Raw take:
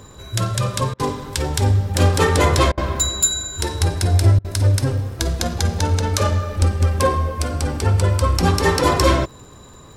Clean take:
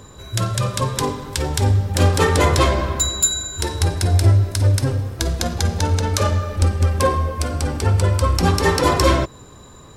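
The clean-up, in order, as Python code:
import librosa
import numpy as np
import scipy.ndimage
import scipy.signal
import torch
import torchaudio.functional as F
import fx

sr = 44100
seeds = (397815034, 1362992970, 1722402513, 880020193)

y = fx.fix_declick_ar(x, sr, threshold=6.5)
y = fx.fix_interpolate(y, sr, at_s=(0.94, 2.72, 4.39), length_ms=54.0)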